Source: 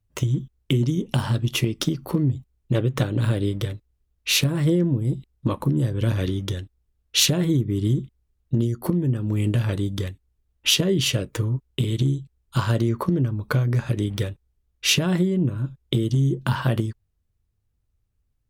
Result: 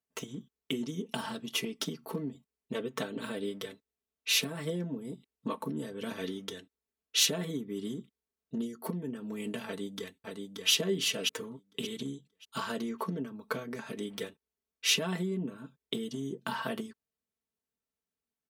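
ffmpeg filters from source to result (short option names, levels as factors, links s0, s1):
-filter_complex "[0:a]asplit=2[s0][s1];[s1]afade=t=in:st=9.66:d=0.01,afade=t=out:st=10.7:d=0.01,aecho=0:1:580|1160|1740|2320:0.668344|0.167086|0.0417715|0.0104429[s2];[s0][s2]amix=inputs=2:normalize=0,highpass=270,aecho=1:1:4.5:0.85,volume=0.355"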